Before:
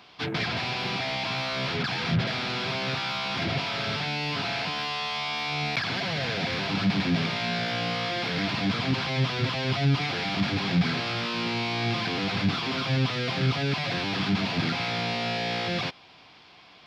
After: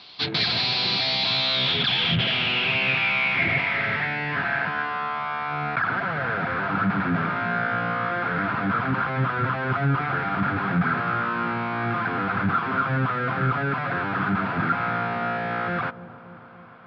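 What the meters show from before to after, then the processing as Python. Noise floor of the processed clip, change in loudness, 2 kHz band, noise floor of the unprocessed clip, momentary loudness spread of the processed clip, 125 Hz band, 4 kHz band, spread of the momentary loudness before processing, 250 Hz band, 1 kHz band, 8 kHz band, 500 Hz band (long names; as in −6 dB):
−43 dBFS, +3.5 dB, +6.0 dB, −53 dBFS, 6 LU, +0.5 dB, +3.0 dB, 3 LU, +0.5 dB, +7.0 dB, can't be measured, +1.5 dB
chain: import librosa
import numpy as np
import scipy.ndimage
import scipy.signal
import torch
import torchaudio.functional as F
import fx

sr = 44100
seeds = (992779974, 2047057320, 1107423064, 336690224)

y = fx.filter_sweep_lowpass(x, sr, from_hz=4200.0, to_hz=1400.0, start_s=1.12, end_s=5.08, q=5.9)
y = fx.echo_wet_lowpass(y, sr, ms=287, feedback_pct=67, hz=720.0, wet_db=-14.0)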